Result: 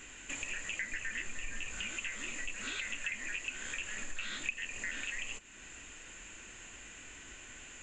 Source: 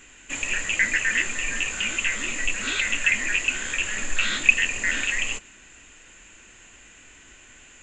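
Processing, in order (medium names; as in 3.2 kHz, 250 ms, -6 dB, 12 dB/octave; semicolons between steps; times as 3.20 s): 0.92–1.87 s: bass shelf 130 Hz +8.5 dB; compression 3:1, threshold -40 dBFS, peak gain reduction 22 dB; trim -1 dB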